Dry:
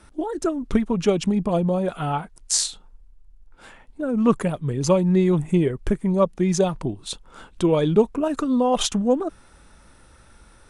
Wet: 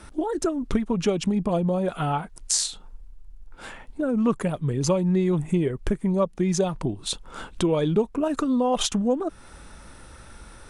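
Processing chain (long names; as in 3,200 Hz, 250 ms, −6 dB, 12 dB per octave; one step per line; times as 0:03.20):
downward compressor 2 to 1, threshold −33 dBFS, peak gain reduction 12 dB
level +6 dB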